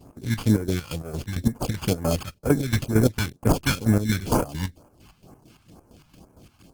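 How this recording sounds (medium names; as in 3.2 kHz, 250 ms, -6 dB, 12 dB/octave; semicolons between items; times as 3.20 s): aliases and images of a low sample rate 1.9 kHz, jitter 0%; chopped level 4.4 Hz, depth 65%, duty 50%; phasing stages 2, 2.1 Hz, lowest notch 420–3600 Hz; Opus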